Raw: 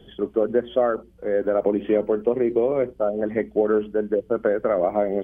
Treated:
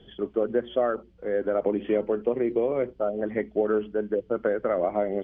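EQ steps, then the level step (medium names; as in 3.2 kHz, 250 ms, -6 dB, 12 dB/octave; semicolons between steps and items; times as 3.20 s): distance through air 180 m; treble shelf 2.7 kHz +10.5 dB; -4.0 dB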